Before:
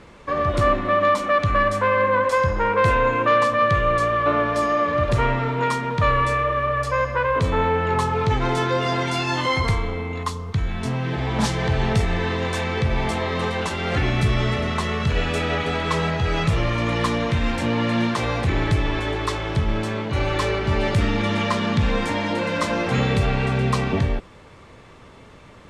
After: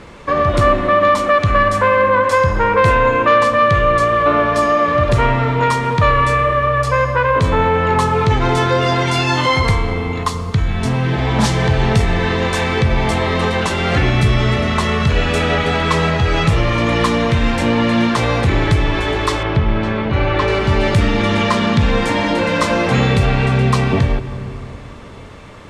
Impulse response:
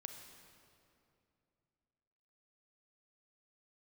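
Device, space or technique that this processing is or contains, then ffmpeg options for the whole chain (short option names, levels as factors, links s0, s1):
compressed reverb return: -filter_complex "[0:a]asplit=2[s0][s1];[1:a]atrim=start_sample=2205[s2];[s1][s2]afir=irnorm=-1:irlink=0,acompressor=threshold=0.0501:ratio=6,volume=1.5[s3];[s0][s3]amix=inputs=2:normalize=0,asettb=1/sr,asplit=3[s4][s5][s6];[s4]atrim=end=19.434[s7];[s5]atrim=start=19.43:end=20.48,asetpts=PTS-STARTPTS,afade=t=in:d=0.004:c=qsin,afade=t=out:st=1.046:d=0.004:c=qsin,lowpass=3100[s8];[s6]atrim=start=20.476[s9];[s7][s8]acrossfade=d=0.004:c1=hsin:c2=qsin[s10];[s10][s9]acrossfade=d=0.004:c1=qsin:c2=hsin,volume=1.41"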